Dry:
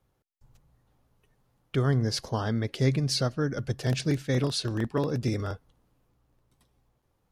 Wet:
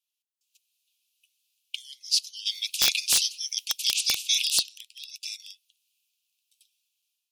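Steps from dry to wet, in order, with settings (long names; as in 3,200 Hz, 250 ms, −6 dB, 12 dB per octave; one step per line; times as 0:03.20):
0:02.45–0:04.57: ceiling on every frequency bin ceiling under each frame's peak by 26 dB
Butterworth high-pass 2,500 Hz 96 dB per octave
automatic gain control gain up to 10 dB
wrap-around overflow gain 9 dB
level −1 dB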